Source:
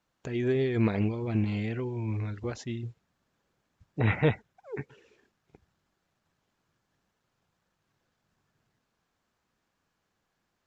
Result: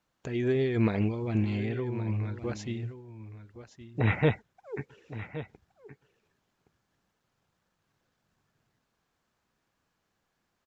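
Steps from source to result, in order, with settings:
0:01.57–0:02.39: high-shelf EQ 4,800 Hz −7 dB
single-tap delay 1,119 ms −13.5 dB

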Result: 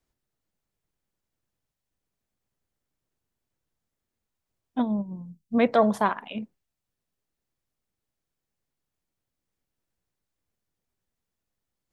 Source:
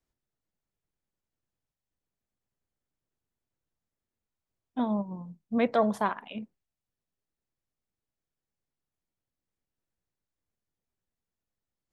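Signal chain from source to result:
0:04.81–0:05.53: parametric band 1,900 Hz → 690 Hz −15 dB 2.9 octaves
level +4.5 dB

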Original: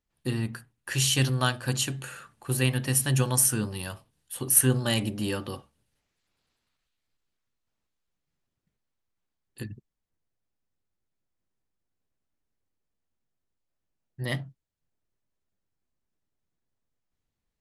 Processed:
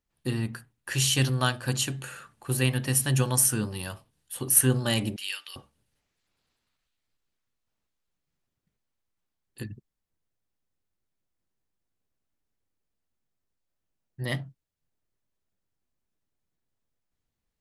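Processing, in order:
0:05.16–0:05.56: high-pass with resonance 2,500 Hz, resonance Q 1.9

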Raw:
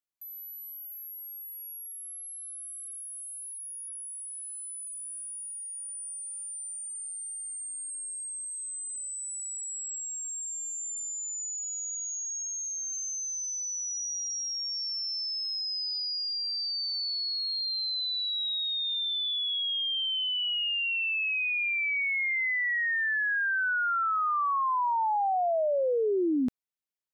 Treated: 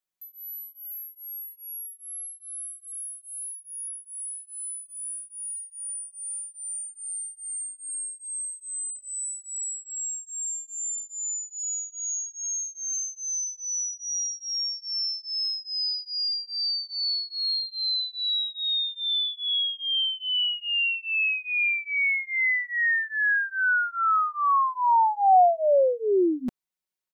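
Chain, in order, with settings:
comb filter 5.4 ms, depth 97%
dynamic equaliser 730 Hz, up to +6 dB, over −43 dBFS, Q 2.3

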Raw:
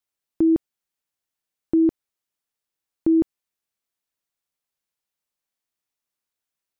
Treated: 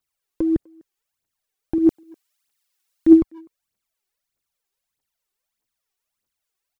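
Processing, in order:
0:01.78–0:03.07: tilt shelving filter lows −8 dB, about 740 Hz
phase shifter 1.6 Hz, delay 2.8 ms, feedback 71%
far-end echo of a speakerphone 250 ms, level −27 dB
level +1 dB

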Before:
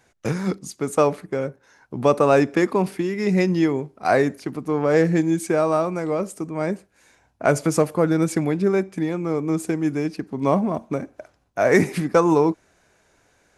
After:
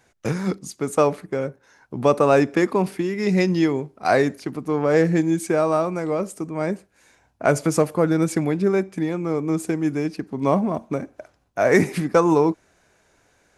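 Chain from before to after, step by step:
0:03.22–0:04.76: dynamic equaliser 4,300 Hz, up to +4 dB, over −43 dBFS, Q 1.1

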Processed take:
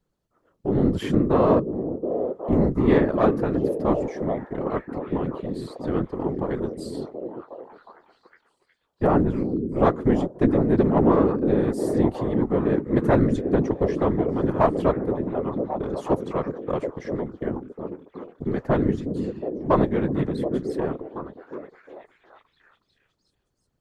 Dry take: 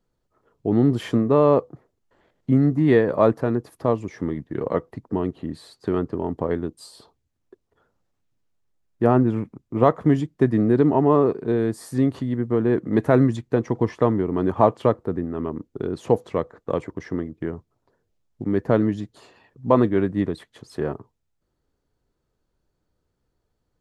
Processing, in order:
one-sided soft clipper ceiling −12.5 dBFS
echo through a band-pass that steps 364 ms, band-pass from 250 Hz, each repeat 0.7 octaves, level −2.5 dB
random phases in short frames
level −1.5 dB

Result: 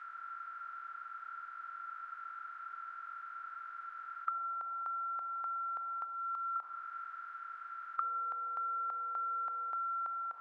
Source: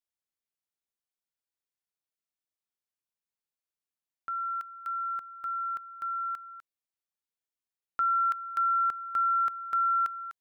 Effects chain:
compressor on every frequency bin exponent 0.2
0:06.04–0:06.56: parametric band 1,700 Hz −14 dB 0.67 octaves
envelope filter 760–1,800 Hz, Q 3, down, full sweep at −26.5 dBFS
0:08.02–0:09.70: steady tone 490 Hz −64 dBFS
on a send: convolution reverb RT60 1.8 s, pre-delay 5 ms, DRR 12.5 dB

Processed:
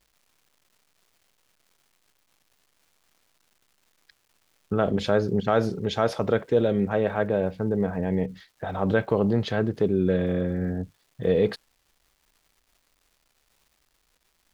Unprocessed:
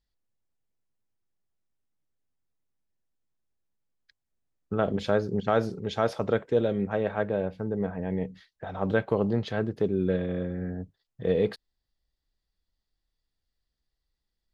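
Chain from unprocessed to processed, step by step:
in parallel at −1 dB: brickwall limiter −21.5 dBFS, peak gain reduction 11.5 dB
on the sum: surface crackle 530 per second −53 dBFS

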